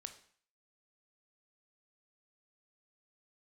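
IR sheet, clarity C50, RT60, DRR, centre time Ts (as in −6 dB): 11.5 dB, 0.50 s, 7.5 dB, 10 ms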